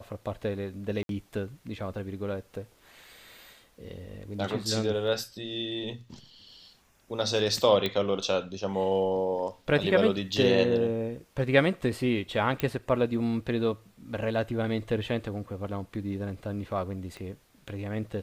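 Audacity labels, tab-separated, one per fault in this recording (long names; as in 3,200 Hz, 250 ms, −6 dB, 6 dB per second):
1.030000	1.090000	drop-out 62 ms
7.860000	7.860000	click −15 dBFS
12.600000	12.600000	click −13 dBFS
17.170000	17.170000	click −29 dBFS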